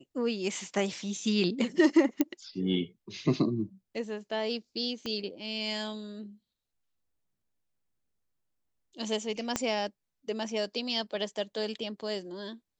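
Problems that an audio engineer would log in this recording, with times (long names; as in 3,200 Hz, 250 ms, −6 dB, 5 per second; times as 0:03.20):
0:02.21: click −12 dBFS
0:05.06: click −21 dBFS
0:09.56: click −13 dBFS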